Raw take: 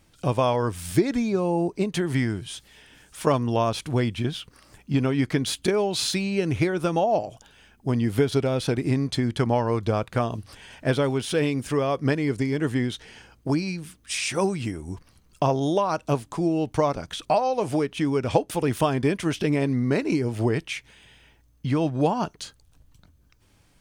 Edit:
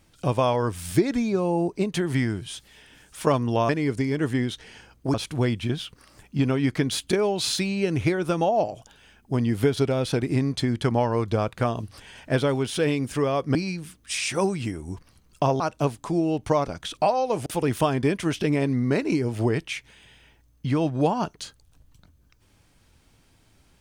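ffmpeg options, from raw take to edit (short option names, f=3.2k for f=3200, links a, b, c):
-filter_complex "[0:a]asplit=6[a][b][c][d][e][f];[a]atrim=end=3.692[g];[b]atrim=start=12.098:end=13.552[h];[c]atrim=start=3.688:end=12.102[i];[d]atrim=start=13.548:end=15.602[j];[e]atrim=start=15.878:end=17.742[k];[f]atrim=start=18.458[l];[g][h]acrossfade=d=0.004:c1=hsin:c2=hsin[m];[m][i]acrossfade=d=0.004:c1=hsin:c2=hsin[n];[n][j]acrossfade=d=0.004:c1=hsin:c2=hsin[o];[o][k]acrossfade=d=0.004:c1=hsin:c2=hsin[p];[p][l]acrossfade=d=0.004:c1=hsin:c2=hsin"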